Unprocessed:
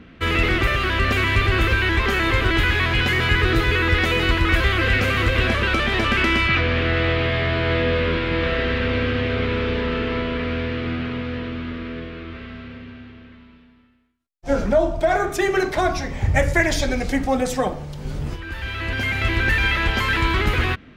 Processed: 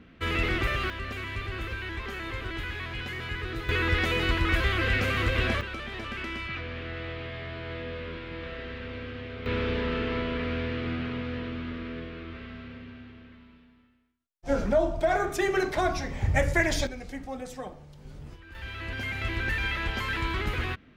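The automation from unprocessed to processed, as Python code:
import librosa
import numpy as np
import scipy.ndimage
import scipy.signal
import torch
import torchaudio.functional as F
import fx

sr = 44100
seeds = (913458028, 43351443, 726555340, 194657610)

y = fx.gain(x, sr, db=fx.steps((0.0, -8.0), (0.9, -16.0), (3.69, -7.0), (5.61, -16.5), (9.46, -6.0), (16.87, -16.5), (18.55, -10.0)))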